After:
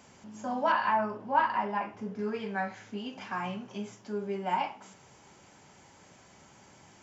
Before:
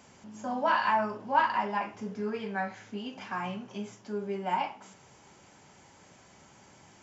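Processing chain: 0.72–2.19 high shelf 3600 Hz -11 dB

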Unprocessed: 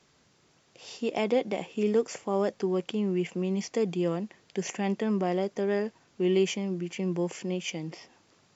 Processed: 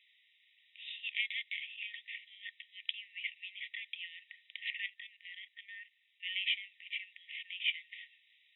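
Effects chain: FFT band-pass 1800–3900 Hz; 4.86–6.23 level quantiser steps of 13 dB; gain +4 dB

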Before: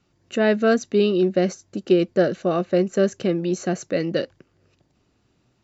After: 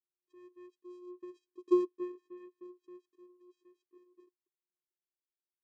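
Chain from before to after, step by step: Doppler pass-by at 1.75, 36 m/s, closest 2.6 m; vocoder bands 4, square 358 Hz; gain -8.5 dB

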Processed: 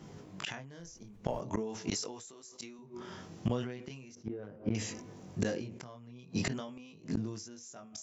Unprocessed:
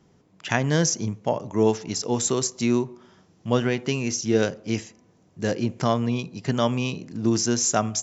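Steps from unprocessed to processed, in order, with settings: HPF 46 Hz 12 dB/oct; chorus 0.42 Hz, delay 19 ms, depth 5.3 ms; 4.15–4.75 LPF 1300 Hz 12 dB/oct; compressor 2:1, threshold -42 dBFS, peak gain reduction 14 dB; flipped gate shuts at -32 dBFS, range -26 dB; 0.79–1.39 added noise brown -76 dBFS; 1.9–2.79 low shelf 240 Hz -12 dB; sustainer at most 55 dB/s; gain +11.5 dB

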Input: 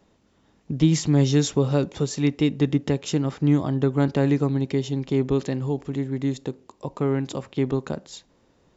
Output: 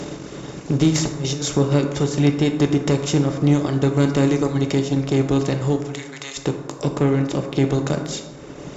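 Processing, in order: per-bin compression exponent 0.4; reverb removal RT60 1.9 s; 5.77–6.37 HPF 1200 Hz 12 dB/oct; 6.96–7.51 high shelf 2500 Hz -5 dB; transient shaper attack -1 dB, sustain -8 dB; 0.9–1.57 negative-ratio compressor -25 dBFS, ratio -0.5; added harmonics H 5 -26 dB, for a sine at -6.5 dBFS; plate-style reverb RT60 1.4 s, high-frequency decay 0.4×, DRR 4 dB

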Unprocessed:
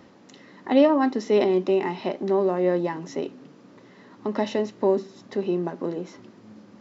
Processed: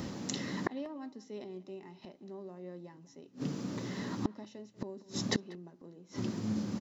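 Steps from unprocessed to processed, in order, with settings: tone controls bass +11 dB, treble +12 dB; flipped gate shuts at -24 dBFS, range -33 dB; speakerphone echo 0.19 s, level -19 dB; gain +6.5 dB

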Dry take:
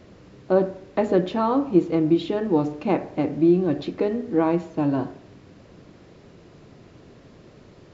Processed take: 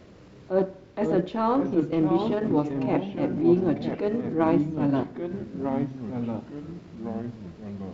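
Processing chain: transient shaper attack -11 dB, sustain -7 dB; echoes that change speed 0.415 s, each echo -3 st, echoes 3, each echo -6 dB

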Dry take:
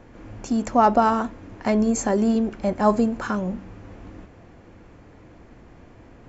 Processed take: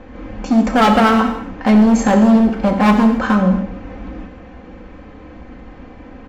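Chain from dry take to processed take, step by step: LPF 3800 Hz 12 dB/oct; comb 3.9 ms, depth 69%; overloaded stage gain 17.5 dB; non-linear reverb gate 0.31 s falling, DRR 4 dB; gain +8 dB

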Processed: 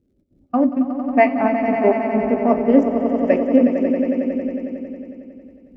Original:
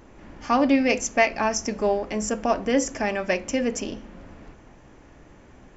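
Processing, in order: Wiener smoothing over 41 samples; low-pass opened by the level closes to 930 Hz, open at -22 dBFS; HPF 47 Hz; low-pass opened by the level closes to 640 Hz, open at -22 dBFS; LPF 2800 Hz 6 dB/oct; in parallel at -2 dB: vocal rider; on the sum: crackle 170/s -40 dBFS; step gate "xxx.xx.xx.x..." 196 bpm -60 dB; swelling echo 91 ms, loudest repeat 5, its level -8 dB; on a send at -10.5 dB: reverb, pre-delay 3 ms; on the sum: spectral expander 1.5:1; gain +1.5 dB

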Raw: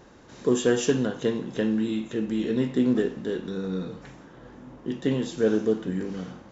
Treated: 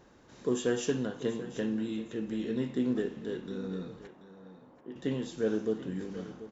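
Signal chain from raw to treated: 4.07–4.96 band-pass 730 Hz, Q 0.81; echo 0.734 s -15 dB; gain -7.5 dB

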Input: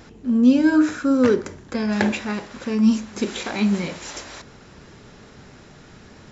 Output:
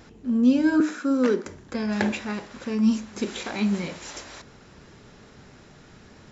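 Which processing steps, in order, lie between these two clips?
0.8–1.46 Chebyshev high-pass 180 Hz, order 5; gain -4 dB

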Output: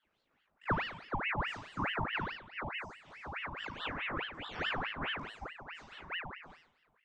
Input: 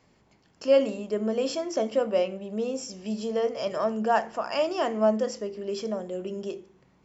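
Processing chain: LFO band-pass sine 1.4 Hz 320–1800 Hz; flutter echo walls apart 3.2 m, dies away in 0.71 s; ring modulator with a swept carrier 1400 Hz, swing 75%, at 4.7 Hz; gain -6.5 dB

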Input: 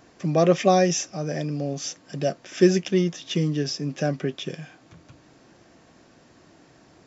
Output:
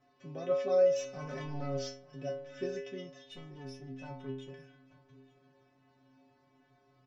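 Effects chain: 0.96–1.88 sample leveller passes 3; air absorption 220 m; 3.28–4.52 tube stage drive 24 dB, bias 0.6; high shelf 6100 Hz +5 dB; metallic resonator 130 Hz, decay 0.73 s, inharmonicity 0.008; echo 0.884 s -21.5 dB; gain +2 dB

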